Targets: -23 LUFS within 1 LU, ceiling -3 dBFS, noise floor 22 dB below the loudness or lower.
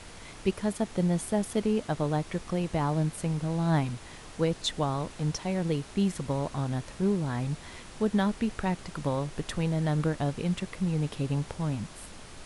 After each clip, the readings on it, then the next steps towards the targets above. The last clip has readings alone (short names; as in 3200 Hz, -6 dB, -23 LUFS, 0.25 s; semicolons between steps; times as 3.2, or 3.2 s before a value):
noise floor -47 dBFS; noise floor target -52 dBFS; loudness -30.0 LUFS; peak -13.5 dBFS; loudness target -23.0 LUFS
-> noise print and reduce 6 dB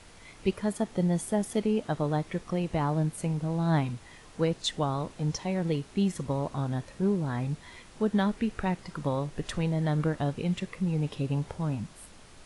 noise floor -52 dBFS; loudness -30.0 LUFS; peak -13.5 dBFS; loudness target -23.0 LUFS
-> gain +7 dB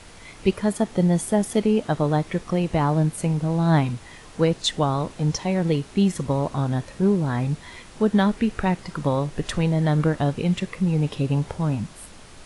loudness -23.0 LUFS; peak -6.5 dBFS; noise floor -45 dBFS